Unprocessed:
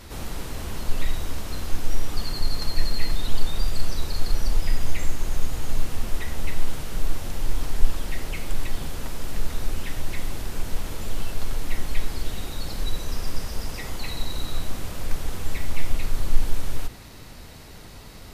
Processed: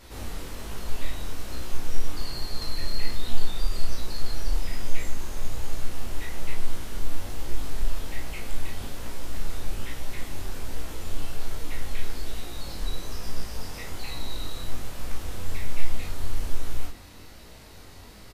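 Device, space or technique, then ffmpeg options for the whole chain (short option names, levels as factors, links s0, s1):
double-tracked vocal: -filter_complex "[0:a]equalizer=f=140:t=o:w=0.83:g=-4,asplit=2[s0][s1];[s1]adelay=34,volume=0.708[s2];[s0][s2]amix=inputs=2:normalize=0,flanger=delay=17:depth=6.9:speed=1.2,volume=0.794"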